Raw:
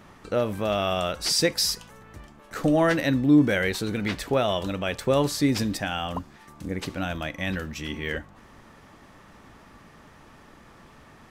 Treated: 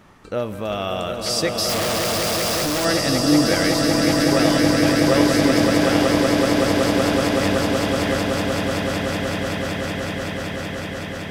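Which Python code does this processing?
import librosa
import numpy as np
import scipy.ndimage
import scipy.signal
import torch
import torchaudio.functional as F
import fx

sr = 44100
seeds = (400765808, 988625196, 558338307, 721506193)

y = fx.echo_swell(x, sr, ms=188, loudest=8, wet_db=-5.0)
y = fx.schmitt(y, sr, flips_db=-35.5, at=(1.69, 2.85))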